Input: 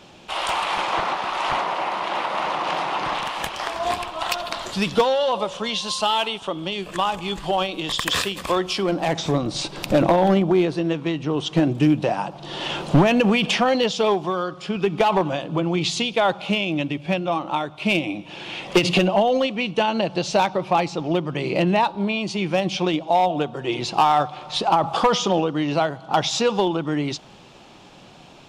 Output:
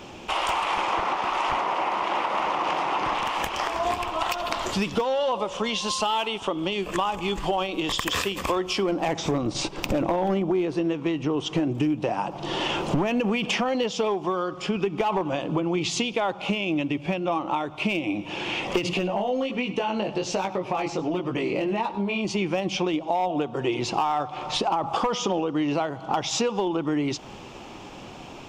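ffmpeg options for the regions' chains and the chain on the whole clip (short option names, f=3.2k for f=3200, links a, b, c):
-filter_complex "[0:a]asettb=1/sr,asplit=3[a][b][c];[a]atrim=end=9.314[d];[b]atrim=start=9.31:end=9.89,asetpts=PTS-STARTPTS,afade=t=in:d=0.004:c=qsin,afade=t=out:st=0.576:d=0.004:c=qsin,agate=range=-7dB:threshold=-33dB:ratio=16:release=100:detection=peak,equalizer=f=12k:w=2:g=-4,asoftclip=type=hard:threshold=-14dB[e];[c]atrim=start=9.886[f];[d][e]acrossfade=d=0.004:c1=hsin:c2=qsin[g];[g][f]acrossfade=d=0.004:c1=qsin:c2=hsin,asettb=1/sr,asplit=3[h][i][j];[h]atrim=end=18.934[k];[i]atrim=start=18.93:end=22.25,asetpts=PTS-STARTPTS,afade=t=in:d=0.004:c=qsin,afade=t=out:st=3.316:d=0.004:c=qsin,flanger=delay=15.5:depth=4.6:speed=1.3,acompressor=threshold=-24dB:ratio=2:attack=3.2:release=140:knee=1:detection=peak,aecho=1:1:100:0.15,atrim=end_sample=146412[l];[j]atrim=start=22.246[m];[k][l]acrossfade=d=0.004:c1=hsin:c2=qsin[n];[n][m]acrossfade=d=0.004:c1=qsin:c2=hsin,equalizer=f=160:t=o:w=0.67:g=-7,equalizer=f=630:t=o:w=0.67:g=-4,equalizer=f=1.6k:t=o:w=0.67:g=-5,equalizer=f=4k:t=o:w=0.67:g=-9,equalizer=f=10k:t=o:w=0.67:g=-9,alimiter=limit=-15dB:level=0:latency=1:release=188,acompressor=threshold=-33dB:ratio=3,volume=8.5dB"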